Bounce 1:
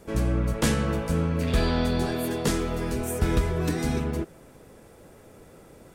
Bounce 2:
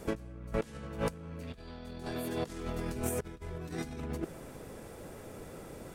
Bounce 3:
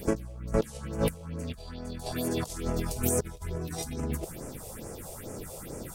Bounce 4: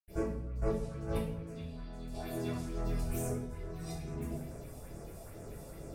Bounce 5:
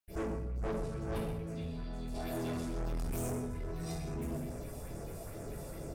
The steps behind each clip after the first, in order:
compressor whose output falls as the input rises −32 dBFS, ratio −0.5; level −4.5 dB
high-shelf EQ 4,400 Hz +10 dB; all-pass phaser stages 4, 2.3 Hz, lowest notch 250–3,700 Hz; level +6 dB
convolution reverb RT60 0.70 s, pre-delay 77 ms; level +13 dB
single-tap delay 126 ms −11 dB; soft clipping −36.5 dBFS, distortion −9 dB; level +4 dB

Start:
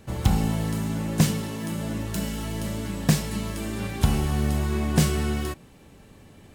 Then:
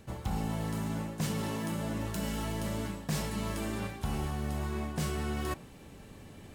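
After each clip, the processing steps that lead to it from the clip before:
dynamic equaliser 920 Hz, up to +5 dB, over −43 dBFS, Q 0.73
reversed playback
downward compressor 6 to 1, threshold −31 dBFS, peak gain reduction 17 dB
reversed playback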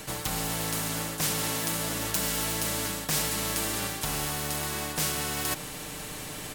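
high-shelf EQ 4,700 Hz +8 dB
comb filter 6.6 ms, depth 60%
every bin compressed towards the loudest bin 2 to 1
level +6 dB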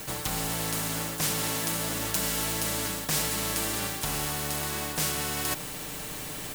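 background noise violet −43 dBFS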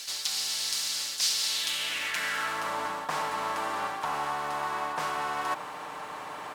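band-pass filter sweep 4,700 Hz → 1,000 Hz, 0:01.44–0:02.76
in parallel at −7 dB: soft clipping −35.5 dBFS, distortion −15 dB
on the sum: level +7.5 dB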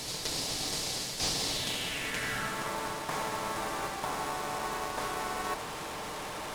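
linear delta modulator 64 kbit/s, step −29.5 dBFS
in parallel at −6 dB: decimation without filtering 29×
on the sum: level −4.5 dB

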